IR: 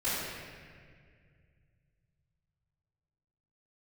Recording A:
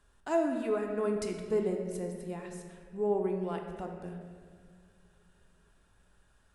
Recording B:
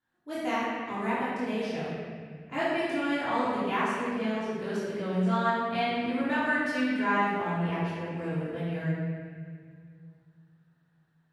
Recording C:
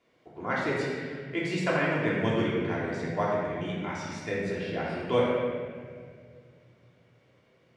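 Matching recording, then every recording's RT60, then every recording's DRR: B; 2.0, 2.0, 2.0 s; 2.0, -15.5, -6.5 dB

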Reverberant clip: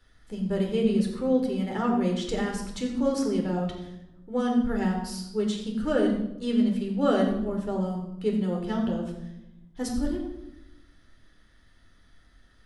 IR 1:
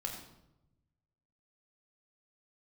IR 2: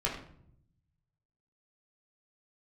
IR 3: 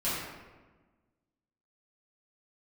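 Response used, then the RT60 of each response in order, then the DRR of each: 1; 0.90, 0.65, 1.3 s; 0.0, -4.5, -12.5 dB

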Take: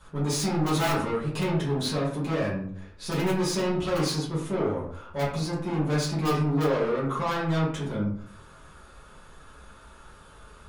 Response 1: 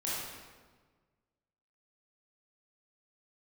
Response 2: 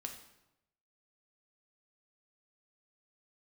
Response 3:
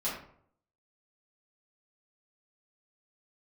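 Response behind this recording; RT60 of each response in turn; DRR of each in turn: 3; 1.5, 0.90, 0.60 s; -8.0, 3.0, -9.5 dB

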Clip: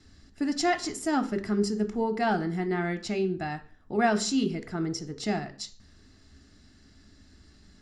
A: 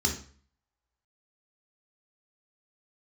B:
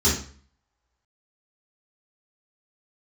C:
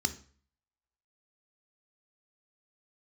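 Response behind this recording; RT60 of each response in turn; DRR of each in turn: C; 0.45, 0.45, 0.45 s; -0.5, -10.0, 7.5 dB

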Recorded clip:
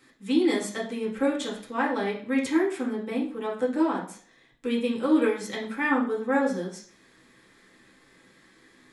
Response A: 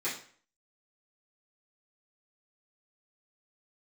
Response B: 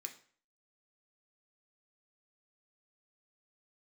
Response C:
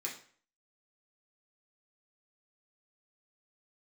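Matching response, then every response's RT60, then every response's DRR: C; 0.50, 0.50, 0.50 s; -12.5, 3.5, -4.0 dB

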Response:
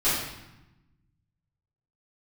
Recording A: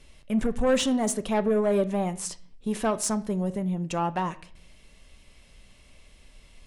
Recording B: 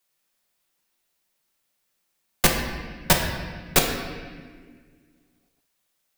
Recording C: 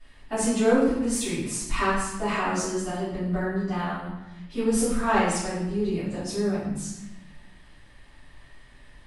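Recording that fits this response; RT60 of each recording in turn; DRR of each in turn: C; 0.55, 1.7, 0.95 s; 11.0, 0.5, -14.0 dB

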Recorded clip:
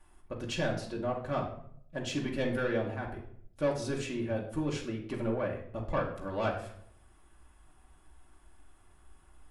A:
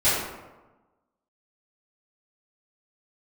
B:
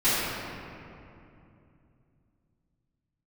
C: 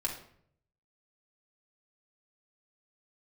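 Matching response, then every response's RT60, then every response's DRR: C; 1.2, 2.7, 0.65 s; -15.0, -18.0, -3.0 dB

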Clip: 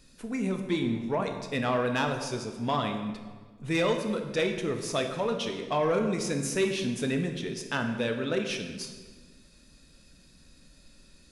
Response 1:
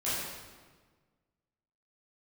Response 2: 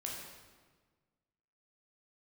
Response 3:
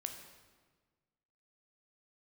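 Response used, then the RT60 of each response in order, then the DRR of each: 3; 1.5, 1.5, 1.5 s; -12.0, -3.0, 4.5 dB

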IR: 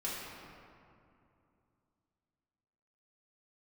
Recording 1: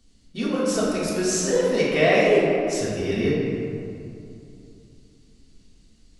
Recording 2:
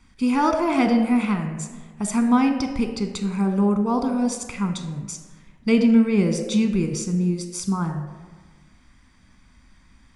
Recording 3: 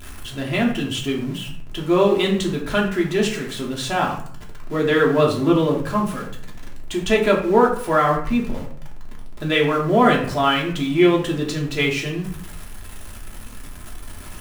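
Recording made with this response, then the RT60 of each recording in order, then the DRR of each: 1; 2.6, 1.4, 0.55 s; -8.0, 6.0, -2.5 dB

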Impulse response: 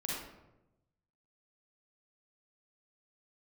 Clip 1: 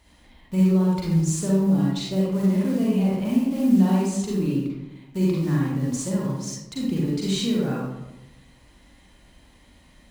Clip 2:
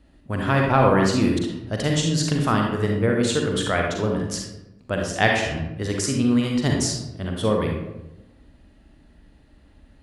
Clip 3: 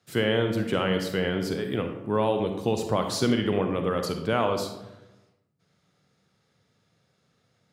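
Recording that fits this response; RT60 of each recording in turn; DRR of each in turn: 1; 0.95, 0.95, 0.95 s; -5.0, 0.5, 5.0 dB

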